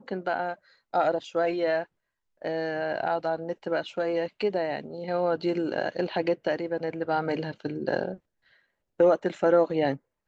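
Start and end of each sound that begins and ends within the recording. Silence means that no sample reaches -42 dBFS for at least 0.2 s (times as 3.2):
0.94–1.84
2.42–8.16
8.99–9.96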